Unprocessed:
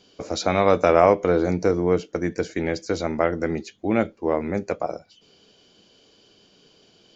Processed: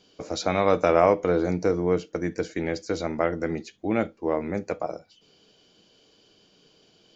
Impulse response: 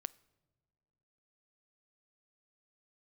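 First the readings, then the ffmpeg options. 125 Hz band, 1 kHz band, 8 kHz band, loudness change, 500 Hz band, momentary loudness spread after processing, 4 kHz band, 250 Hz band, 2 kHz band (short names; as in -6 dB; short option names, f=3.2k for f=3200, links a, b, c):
-3.0 dB, -3.5 dB, n/a, -3.0 dB, -3.0 dB, 12 LU, -3.0 dB, -3.0 dB, -3.0 dB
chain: -filter_complex "[1:a]atrim=start_sample=2205,atrim=end_sample=3528[a];[0:a][a]afir=irnorm=-1:irlink=0"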